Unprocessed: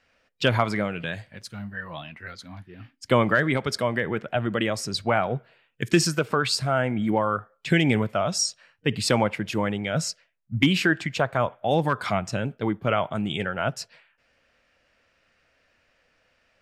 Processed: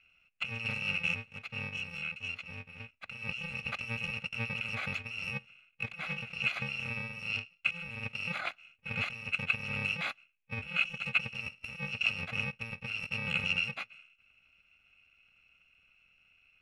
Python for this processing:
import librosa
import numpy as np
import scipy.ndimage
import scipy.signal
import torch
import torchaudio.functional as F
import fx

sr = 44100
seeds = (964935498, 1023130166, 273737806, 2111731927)

y = fx.bit_reversed(x, sr, seeds[0], block=128)
y = fx.over_compress(y, sr, threshold_db=-29.0, ratio=-1.0)
y = fx.lowpass_res(y, sr, hz=2500.0, q=11.0)
y = y * 10.0 ** (-8.5 / 20.0)